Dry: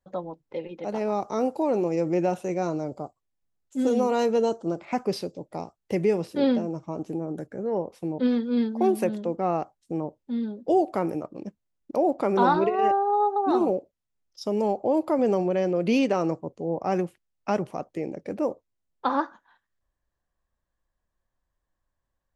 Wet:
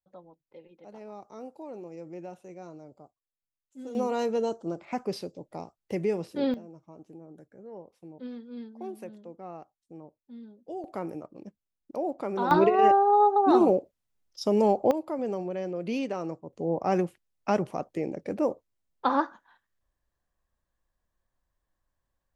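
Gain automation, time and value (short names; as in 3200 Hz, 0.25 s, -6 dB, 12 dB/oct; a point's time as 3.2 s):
-17 dB
from 3.95 s -5 dB
from 6.54 s -16.5 dB
from 10.84 s -8 dB
from 12.51 s +2.5 dB
from 14.91 s -8.5 dB
from 16.53 s 0 dB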